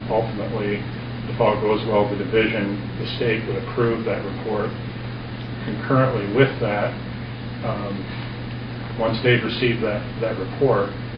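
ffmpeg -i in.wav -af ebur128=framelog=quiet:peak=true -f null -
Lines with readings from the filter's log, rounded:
Integrated loudness:
  I:         -22.9 LUFS
  Threshold: -32.9 LUFS
Loudness range:
  LRA:         2.5 LU
  Threshold: -43.1 LUFS
  LRA low:   -24.4 LUFS
  LRA high:  -21.8 LUFS
True peak:
  Peak:       -2.5 dBFS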